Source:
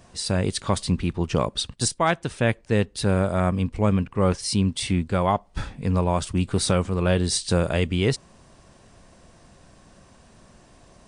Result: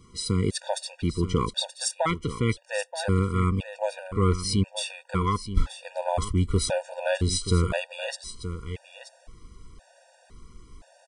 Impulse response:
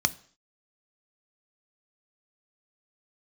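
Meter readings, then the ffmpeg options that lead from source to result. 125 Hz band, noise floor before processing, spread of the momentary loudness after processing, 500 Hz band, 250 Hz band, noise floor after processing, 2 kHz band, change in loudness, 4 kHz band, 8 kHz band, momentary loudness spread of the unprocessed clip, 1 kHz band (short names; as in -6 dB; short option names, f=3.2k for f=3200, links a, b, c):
-2.5 dB, -54 dBFS, 10 LU, -4.0 dB, -5.0 dB, -59 dBFS, -4.0 dB, -3.5 dB, -2.5 dB, -3.0 dB, 4 LU, -3.5 dB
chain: -af "aecho=1:1:928:0.266,asubboost=boost=4.5:cutoff=66,afftfilt=real='re*gt(sin(2*PI*0.97*pts/sr)*(1-2*mod(floor(b*sr/1024/480),2)),0)':imag='im*gt(sin(2*PI*0.97*pts/sr)*(1-2*mod(floor(b*sr/1024/480),2)),0)':win_size=1024:overlap=0.75"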